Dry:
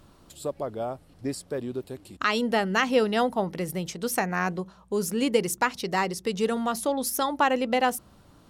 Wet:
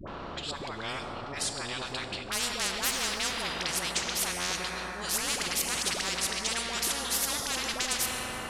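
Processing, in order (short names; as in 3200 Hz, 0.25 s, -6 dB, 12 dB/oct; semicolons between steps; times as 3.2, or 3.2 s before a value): low-pass opened by the level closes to 2400 Hz, open at -24.5 dBFS; Bessel low-pass 5200 Hz, order 2; high shelf 2200 Hz +2.5 dB; added harmonics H 5 -20 dB, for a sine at -10 dBFS; auto swell 0.147 s; dispersion highs, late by 77 ms, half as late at 700 Hz; on a send at -11 dB: reverb RT60 2.2 s, pre-delay 7 ms; on the sum: spectral compressor 10:1; gain -5 dB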